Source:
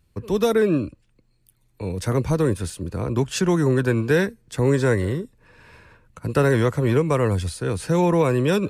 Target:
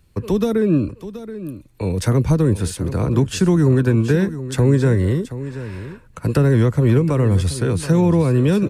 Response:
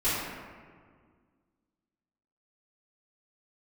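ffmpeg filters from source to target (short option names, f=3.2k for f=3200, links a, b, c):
-filter_complex "[0:a]acrossover=split=310[a][b];[b]acompressor=threshold=-31dB:ratio=6[c];[a][c]amix=inputs=2:normalize=0,asplit=2[d][e];[e]aecho=0:1:727:0.211[f];[d][f]amix=inputs=2:normalize=0,volume=7dB"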